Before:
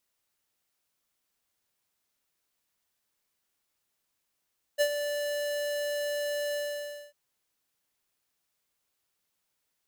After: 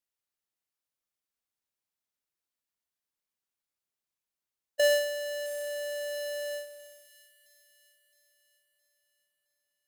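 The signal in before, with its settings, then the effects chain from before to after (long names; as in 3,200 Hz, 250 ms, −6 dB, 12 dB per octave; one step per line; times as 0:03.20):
note with an ADSR envelope square 584 Hz, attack 30 ms, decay 71 ms, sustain −9 dB, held 1.76 s, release 588 ms −22.5 dBFS
noise gate −32 dBFS, range −22 dB
in parallel at −4 dB: sine wavefolder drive 7 dB, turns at −22 dBFS
on the sum: delay with a high-pass on its return 666 ms, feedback 49%, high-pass 2,900 Hz, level −13 dB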